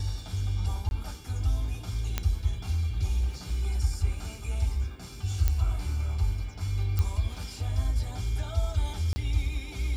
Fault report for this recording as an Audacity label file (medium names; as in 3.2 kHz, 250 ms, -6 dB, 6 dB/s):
0.890000	0.910000	dropout 21 ms
2.180000	2.180000	pop -12 dBFS
3.500000	3.500000	dropout 2.4 ms
5.480000	5.480000	pop -13 dBFS
6.990000	6.990000	pop -16 dBFS
9.130000	9.160000	dropout 30 ms